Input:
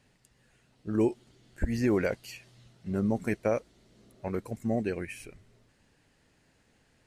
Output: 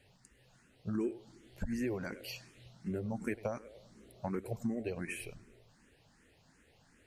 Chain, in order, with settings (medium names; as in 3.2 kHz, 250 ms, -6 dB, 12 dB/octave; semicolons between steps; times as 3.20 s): compression 6:1, threshold -34 dBFS, peak gain reduction 12.5 dB; tape echo 102 ms, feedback 51%, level -14 dB, low-pass 2.6 kHz; barber-pole phaser +2.7 Hz; trim +3.5 dB